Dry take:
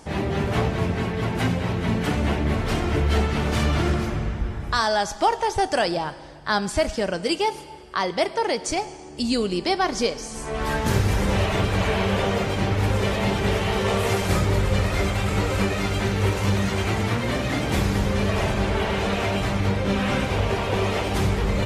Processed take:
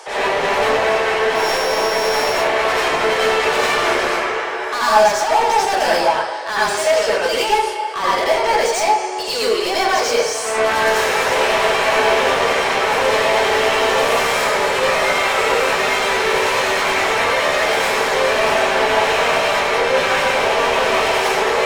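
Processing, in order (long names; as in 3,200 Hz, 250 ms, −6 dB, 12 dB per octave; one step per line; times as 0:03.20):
0:01.35–0:02.33: samples sorted by size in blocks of 8 samples
Butterworth high-pass 360 Hz 72 dB per octave
mid-hump overdrive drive 28 dB, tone 4,800 Hz, clips at −8 dBFS
convolution reverb RT60 0.40 s, pre-delay 77 ms, DRR −7 dB
level −8.5 dB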